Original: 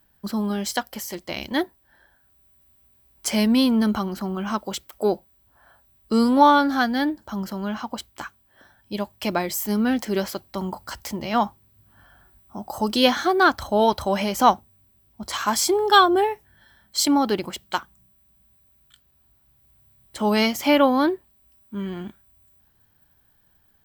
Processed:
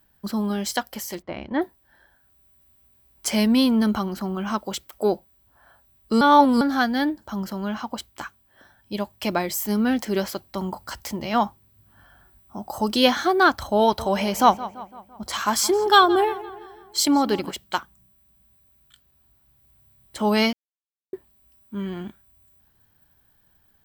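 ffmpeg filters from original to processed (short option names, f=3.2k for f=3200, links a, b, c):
-filter_complex "[0:a]asplit=3[a][b][c];[a]afade=t=out:st=1.21:d=0.02[d];[b]lowpass=1.6k,afade=t=in:st=1.21:d=0.02,afade=t=out:st=1.61:d=0.02[e];[c]afade=t=in:st=1.61:d=0.02[f];[d][e][f]amix=inputs=3:normalize=0,asettb=1/sr,asplit=3[g][h][i];[g]atrim=end=13.824[j];[h]atrim=start=13.82:end=17.51,asetpts=PTS-STARTPTS,afade=t=in:d=0.004:c=qsin,afade=t=out:st=3.686:d=0.004:c=qsin,asplit=2[k][l];[l]adelay=169,lowpass=f=3.5k:p=1,volume=-16dB,asplit=2[m][n];[n]adelay=169,lowpass=f=3.5k:p=1,volume=0.53,asplit=2[o][p];[p]adelay=169,lowpass=f=3.5k:p=1,volume=0.53,asplit=2[q][r];[r]adelay=169,lowpass=f=3.5k:p=1,volume=0.53,asplit=2[s][t];[t]adelay=169,lowpass=f=3.5k:p=1,volume=0.53[u];[k][m][o][q][s][u]amix=inputs=6:normalize=0,atrim=end_sample=162729[v];[i]atrim=start=17.506[w];[j][v]acrossfade=d=0.004:c1=hsin:c2=qsin[x];[x][w]acrossfade=d=0.004:c1=qsin:c2=hsin,asplit=5[y][z][aa][ab][ac];[y]atrim=end=6.212[ad];[z]atrim=start=6.208:end=6.612,asetpts=PTS-STARTPTS,areverse[ae];[aa]atrim=start=6.608:end=20.53,asetpts=PTS-STARTPTS,afade=t=out:st=13.918:d=0.004:c=hsin[af];[ab]atrim=start=20.53:end=21.13,asetpts=PTS-STARTPTS,volume=0[ag];[ac]atrim=start=21.13,asetpts=PTS-STARTPTS,afade=t=in:d=0.004:c=hsin[ah];[ad][ae]acrossfade=d=0.004:c1=hsin:c2=hsin[ai];[af][ag][ah]concat=n=3:v=0:a=1[aj];[ai][aj]acrossfade=d=0.004:c1=hsin:c2=hsin"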